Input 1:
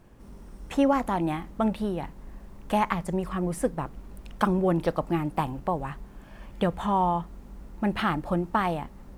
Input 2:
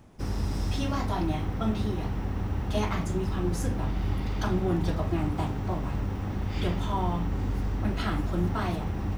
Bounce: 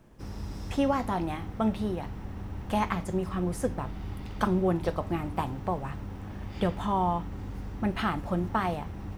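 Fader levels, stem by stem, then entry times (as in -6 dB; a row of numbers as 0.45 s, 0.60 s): -3.5 dB, -8.0 dB; 0.00 s, 0.00 s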